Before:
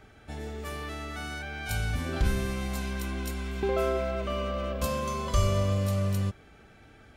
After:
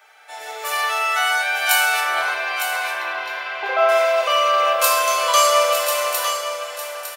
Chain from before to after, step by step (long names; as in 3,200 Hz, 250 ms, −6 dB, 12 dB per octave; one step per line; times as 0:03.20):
inverse Chebyshev high-pass filter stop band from 250 Hz, stop band 50 dB
high-shelf EQ 12,000 Hz +10 dB
automatic gain control gain up to 9 dB
0:02.00–0:03.89: high-frequency loss of the air 310 metres
single-tap delay 906 ms −8.5 dB
feedback delay network reverb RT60 0.87 s, low-frequency decay 1×, high-frequency decay 0.75×, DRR −1.5 dB
level +4.5 dB